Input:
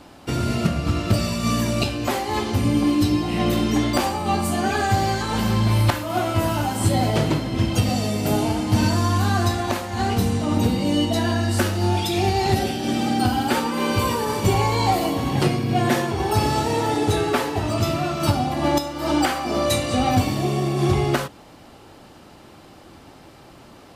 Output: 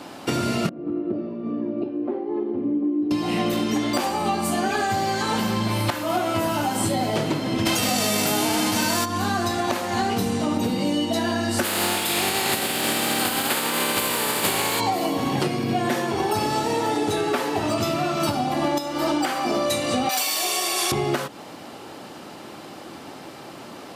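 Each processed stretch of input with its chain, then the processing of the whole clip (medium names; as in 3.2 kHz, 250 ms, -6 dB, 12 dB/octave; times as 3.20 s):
0.69–3.11 s: band-pass filter 340 Hz, Q 4.2 + distance through air 280 m
7.65–9.04 s: formants flattened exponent 0.6 + level flattener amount 100%
11.63–14.79 s: spectral contrast reduction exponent 0.4 + peaking EQ 5.8 kHz -11.5 dB 0.32 oct
20.09–20.92 s: high-pass 470 Hz + tilt EQ +4.5 dB/octave + transformer saturation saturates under 1.2 kHz
whole clip: high-pass 180 Hz 12 dB/octave; compression, threshold -28 dBFS; trim +7.5 dB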